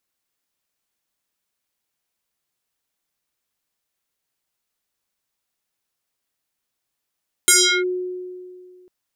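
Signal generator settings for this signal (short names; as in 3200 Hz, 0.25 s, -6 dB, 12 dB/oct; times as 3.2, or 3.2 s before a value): FM tone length 1.40 s, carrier 364 Hz, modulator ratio 4.9, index 6.3, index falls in 0.36 s linear, decay 2.19 s, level -9 dB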